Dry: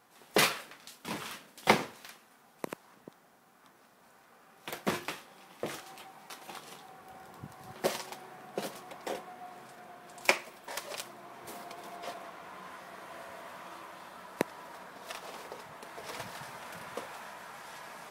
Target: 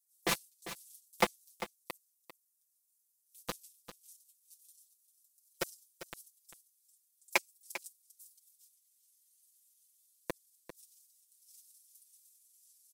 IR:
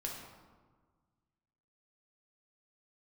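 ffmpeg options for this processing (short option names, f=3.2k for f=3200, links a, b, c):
-filter_complex "[0:a]acrossover=split=6700[a][b];[a]aeval=exprs='val(0)*gte(abs(val(0)),0.0891)':c=same[c];[c][b]amix=inputs=2:normalize=0,atempo=1.4,aecho=1:1:5.9:0.83,aecho=1:1:397:0.237,volume=-5dB"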